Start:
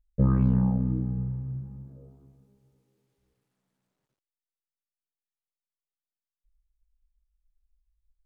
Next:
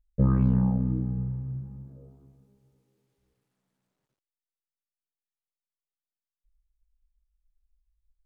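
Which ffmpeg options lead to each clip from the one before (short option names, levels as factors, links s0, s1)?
-af anull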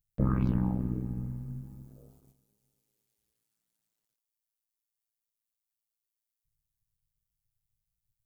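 -af "tremolo=f=110:d=0.788,crystalizer=i=8:c=0,agate=range=0.355:threshold=0.00141:ratio=16:detection=peak,volume=0.794"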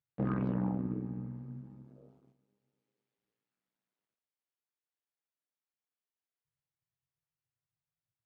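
-af "asoftclip=type=hard:threshold=0.0891,highpass=170,lowpass=2400"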